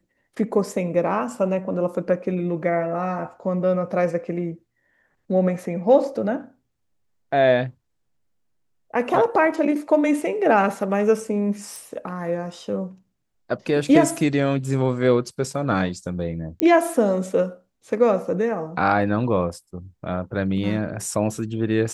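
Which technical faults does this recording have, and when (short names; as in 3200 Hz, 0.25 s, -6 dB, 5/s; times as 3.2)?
11.76 pop
16.6 pop -7 dBFS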